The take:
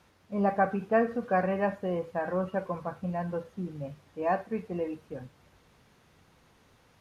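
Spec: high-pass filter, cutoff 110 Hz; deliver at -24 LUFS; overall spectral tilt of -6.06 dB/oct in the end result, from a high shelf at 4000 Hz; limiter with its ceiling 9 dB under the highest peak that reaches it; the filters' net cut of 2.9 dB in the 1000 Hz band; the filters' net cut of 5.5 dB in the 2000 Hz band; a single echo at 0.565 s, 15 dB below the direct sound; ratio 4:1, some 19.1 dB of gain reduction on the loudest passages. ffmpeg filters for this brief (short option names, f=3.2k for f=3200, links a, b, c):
-af "highpass=110,equalizer=f=1k:t=o:g=-3.5,equalizer=f=2k:t=o:g=-5,highshelf=f=4k:g=-4,acompressor=threshold=-46dB:ratio=4,alimiter=level_in=18dB:limit=-24dB:level=0:latency=1,volume=-18dB,aecho=1:1:565:0.178,volume=28dB"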